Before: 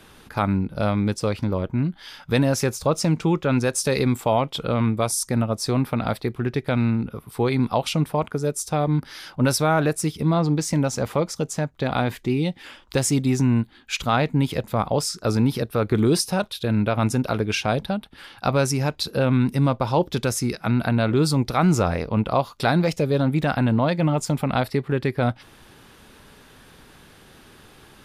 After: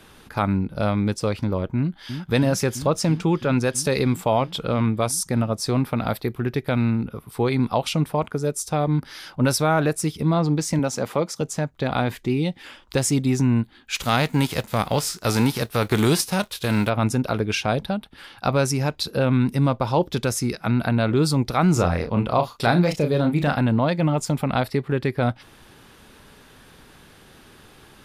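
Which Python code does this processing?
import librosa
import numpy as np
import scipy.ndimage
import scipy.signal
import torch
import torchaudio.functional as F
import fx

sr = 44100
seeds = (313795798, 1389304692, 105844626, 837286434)

y = fx.echo_throw(x, sr, start_s=1.76, length_s=0.54, ms=330, feedback_pct=85, wet_db=-8.5)
y = fx.peak_eq(y, sr, hz=13000.0, db=12.0, octaves=0.26, at=(5.96, 7.08))
y = fx.highpass(y, sr, hz=150.0, slope=12, at=(10.79, 11.41))
y = fx.envelope_flatten(y, sr, power=0.6, at=(13.94, 16.88), fade=0.02)
y = fx.doubler(y, sr, ms=34.0, db=-7.0, at=(21.73, 23.61))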